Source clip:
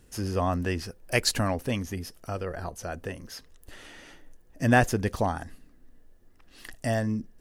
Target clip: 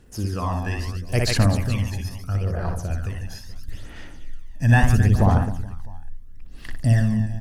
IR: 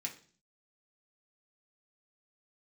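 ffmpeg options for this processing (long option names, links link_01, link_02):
-af "aecho=1:1:60|144|261.6|426.2|656.7:0.631|0.398|0.251|0.158|0.1,aphaser=in_gain=1:out_gain=1:delay=1.2:decay=0.57:speed=0.75:type=sinusoidal,asubboost=boost=4:cutoff=190,volume=-2.5dB"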